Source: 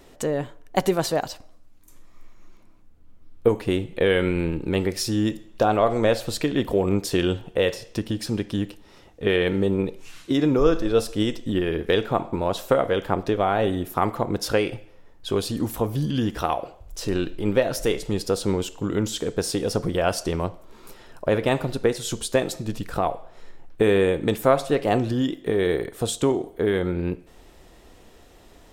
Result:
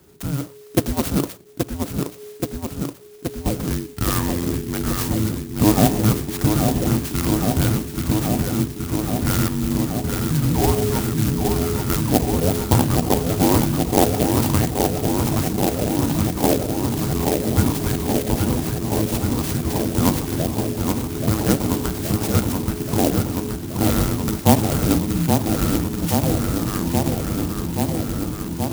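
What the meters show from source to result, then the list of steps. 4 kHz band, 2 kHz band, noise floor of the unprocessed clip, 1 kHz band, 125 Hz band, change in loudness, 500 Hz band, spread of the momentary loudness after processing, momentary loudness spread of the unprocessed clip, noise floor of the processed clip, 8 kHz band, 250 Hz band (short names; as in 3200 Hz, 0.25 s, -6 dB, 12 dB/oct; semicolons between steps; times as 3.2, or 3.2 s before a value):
+2.0 dB, -1.0 dB, -51 dBFS, +2.5 dB, +9.0 dB, +3.0 dB, -2.0 dB, 8 LU, 8 LU, -37 dBFS, +8.5 dB, +5.5 dB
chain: darkening echo 0.826 s, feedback 85%, low-pass 4600 Hz, level -4.5 dB; dynamic EQ 990 Hz, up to +8 dB, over -36 dBFS, Q 1; frequency shift -430 Hz; HPF 71 Hz; clock jitter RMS 0.12 ms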